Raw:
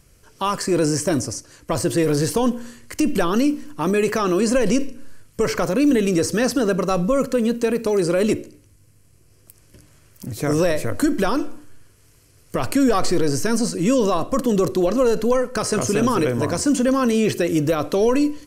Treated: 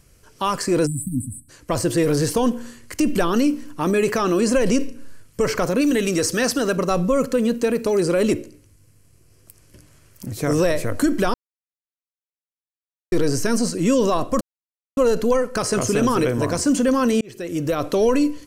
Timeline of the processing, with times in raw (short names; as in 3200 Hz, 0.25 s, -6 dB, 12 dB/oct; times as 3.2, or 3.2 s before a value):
0.87–1.49 spectral delete 280–7700 Hz
5.81–6.77 tilt shelf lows -3.5 dB, about 820 Hz
11.34–13.12 mute
14.41–14.97 mute
17.21–17.87 fade in